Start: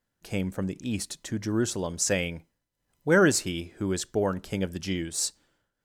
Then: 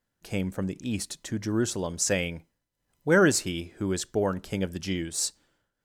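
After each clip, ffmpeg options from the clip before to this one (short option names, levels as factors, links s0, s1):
-af anull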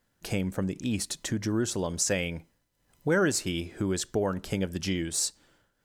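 -af "acompressor=threshold=0.0112:ratio=2,volume=2.37"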